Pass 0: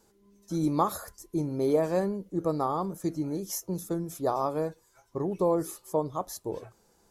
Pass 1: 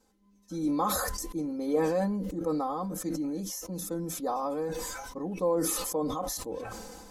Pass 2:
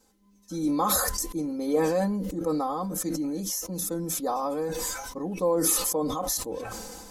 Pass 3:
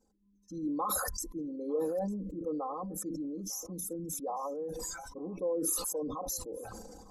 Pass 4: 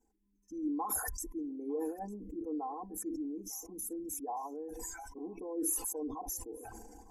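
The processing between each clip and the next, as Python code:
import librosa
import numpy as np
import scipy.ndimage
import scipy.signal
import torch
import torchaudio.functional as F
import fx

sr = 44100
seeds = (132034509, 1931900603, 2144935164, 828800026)

y1 = fx.high_shelf(x, sr, hz=9900.0, db=-5.5)
y1 = y1 + 0.97 * np.pad(y1, (int(3.9 * sr / 1000.0), 0))[:len(y1)]
y1 = fx.sustainer(y1, sr, db_per_s=26.0)
y1 = F.gain(torch.from_numpy(y1), -6.5).numpy()
y2 = fx.high_shelf(y1, sr, hz=4000.0, db=6.0)
y2 = F.gain(torch.from_numpy(y2), 2.5).numpy()
y3 = fx.envelope_sharpen(y2, sr, power=2.0)
y3 = y3 + 10.0 ** (-24.0 / 20.0) * np.pad(y3, (int(901 * sr / 1000.0), 0))[:len(y3)]
y3 = F.gain(torch.from_numpy(y3), -8.0).numpy()
y4 = fx.fixed_phaser(y3, sr, hz=820.0, stages=8)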